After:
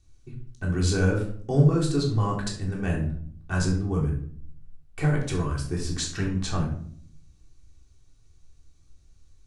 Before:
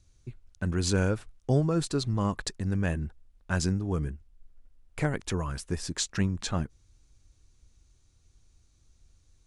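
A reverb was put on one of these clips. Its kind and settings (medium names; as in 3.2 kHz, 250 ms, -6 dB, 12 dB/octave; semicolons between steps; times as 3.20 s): simulated room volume 740 m³, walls furnished, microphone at 3.5 m; trim -3 dB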